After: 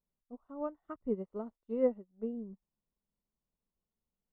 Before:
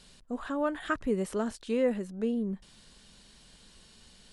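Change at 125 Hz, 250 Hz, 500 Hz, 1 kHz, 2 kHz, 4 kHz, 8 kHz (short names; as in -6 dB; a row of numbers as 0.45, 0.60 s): under -10 dB, -8.0 dB, -4.5 dB, -11.0 dB, under -20 dB, under -25 dB, under -30 dB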